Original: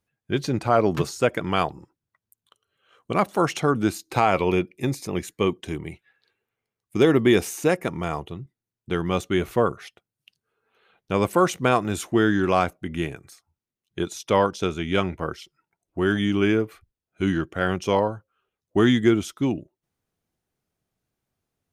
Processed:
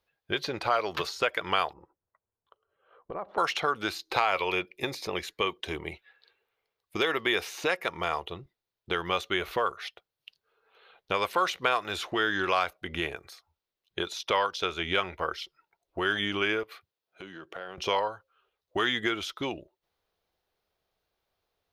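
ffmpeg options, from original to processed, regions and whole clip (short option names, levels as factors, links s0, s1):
-filter_complex "[0:a]asettb=1/sr,asplit=3[s0][s1][s2];[s0]atrim=end=1.734[s3];[s1]atrim=start=1.73:end=3.38,asetpts=PTS-STARTPTS,afade=t=in:d=0.004:c=qsin,afade=t=out:st=1.646:d=0.004:c=qsin,lowpass=1100,acompressor=threshold=0.0251:ratio=16:attack=3.2:release=140:knee=1:detection=peak[s4];[s2]atrim=start=3.376[s5];[s3][s4]acrossfade=d=0.004:c1=hsin:c2=qsin[s6];[s6][s5]acrossfade=d=0.004:c1=qsin:c2=hsin,asettb=1/sr,asplit=3[s7][s8][s9];[s7]atrim=end=16.634[s10];[s8]atrim=start=16.63:end=17.78,asetpts=PTS-STARTPTS,afade=t=in:d=0.004:c=qsin,afade=t=out:st=1.146:d=0.004:c=qsin,highpass=f=120:w=0.5412,highpass=f=120:w=1.3066,acompressor=threshold=0.01:ratio=5:attack=3.2:release=140:knee=1:detection=peak[s11];[s9]atrim=start=17.776[s12];[s10][s11]acrossfade=d=0.004:c1=hsin:c2=qsin[s13];[s13][s12]acrossfade=d=0.004:c1=qsin:c2=hsin,equalizer=f=125:t=o:w=1:g=-11,equalizer=f=250:t=o:w=1:g=-10,equalizer=f=500:t=o:w=1:g=5,equalizer=f=1000:t=o:w=1:g=3,equalizer=f=4000:t=o:w=1:g=8,equalizer=f=8000:t=o:w=1:g=-11,acrossover=split=1200|2700|7000[s14][s15][s16][s17];[s14]acompressor=threshold=0.0224:ratio=4[s18];[s15]acompressor=threshold=0.0447:ratio=4[s19];[s16]acompressor=threshold=0.0126:ratio=4[s20];[s17]acompressor=threshold=0.00224:ratio=4[s21];[s18][s19][s20][s21]amix=inputs=4:normalize=0,volume=1.19"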